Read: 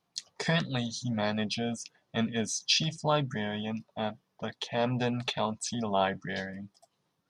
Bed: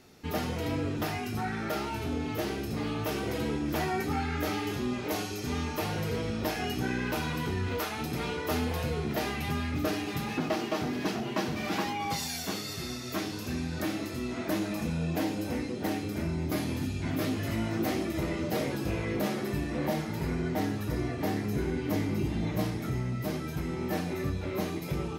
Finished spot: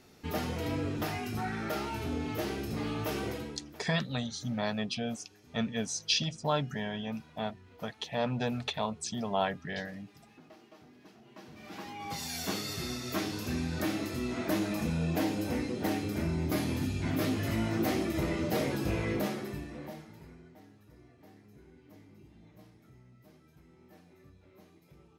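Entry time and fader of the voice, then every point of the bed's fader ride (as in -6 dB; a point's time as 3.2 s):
3.40 s, -2.5 dB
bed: 3.26 s -2 dB
3.86 s -25 dB
11.15 s -25 dB
12.46 s 0 dB
19.11 s 0 dB
20.61 s -26 dB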